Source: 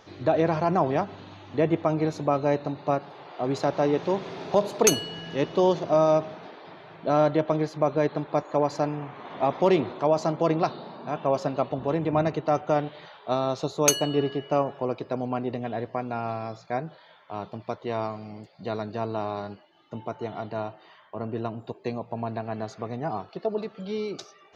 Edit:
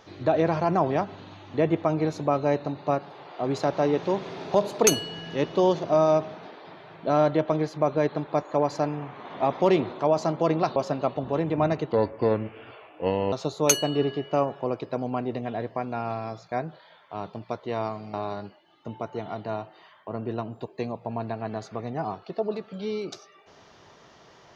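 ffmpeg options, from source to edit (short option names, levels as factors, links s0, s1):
-filter_complex "[0:a]asplit=5[s0][s1][s2][s3][s4];[s0]atrim=end=10.762[s5];[s1]atrim=start=11.308:end=12.474[s6];[s2]atrim=start=12.47:end=13.51,asetpts=PTS-STARTPTS,asetrate=32634,aresample=44100,atrim=end_sample=61978,asetpts=PTS-STARTPTS[s7];[s3]atrim=start=13.506:end=18.322[s8];[s4]atrim=start=19.198[s9];[s5][s6]acrossfade=d=0.004:c1=hsin:c2=hsin[s10];[s10][s7]acrossfade=d=0.004:c1=hsin:c2=hsin[s11];[s11][s8]acrossfade=d=0.004:c1=hsin:c2=hsin[s12];[s12][s9]acrossfade=d=0.004:c1=hsin:c2=hsin"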